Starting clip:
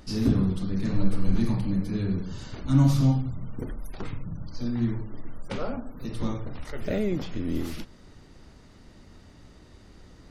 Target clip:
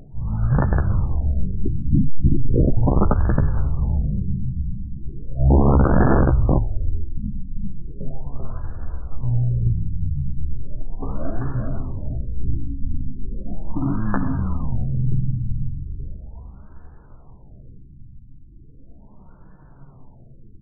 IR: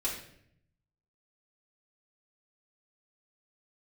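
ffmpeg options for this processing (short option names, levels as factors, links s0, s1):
-filter_complex "[0:a]bass=f=250:g=-7,treble=f=4000:g=-13,acrusher=bits=3:mode=log:mix=0:aa=0.000001,aphaser=in_gain=1:out_gain=1:delay=4.9:decay=0.47:speed=0.34:type=triangular,asplit=6[s0][s1][s2][s3][s4][s5];[s1]adelay=194,afreqshift=-49,volume=0.708[s6];[s2]adelay=388,afreqshift=-98,volume=0.248[s7];[s3]adelay=582,afreqshift=-147,volume=0.0871[s8];[s4]adelay=776,afreqshift=-196,volume=0.0302[s9];[s5]adelay=970,afreqshift=-245,volume=0.0106[s10];[s0][s6][s7][s8][s9][s10]amix=inputs=6:normalize=0,aeval=exprs='clip(val(0),-1,0.0944)':c=same,equalizer=f=1000:t=o:w=2.7:g=-8.5,asetrate=22050,aresample=44100,aeval=exprs='(mod(8.91*val(0)+1,2)-1)/8.91':c=same,asplit=2[s11][s12];[s12]adelay=15,volume=0.473[s13];[s11][s13]amix=inputs=2:normalize=0,afftfilt=real='re*lt(b*sr/1024,300*pow(1800/300,0.5+0.5*sin(2*PI*0.37*pts/sr)))':imag='im*lt(b*sr/1024,300*pow(1800/300,0.5+0.5*sin(2*PI*0.37*pts/sr)))':win_size=1024:overlap=0.75,volume=2.82"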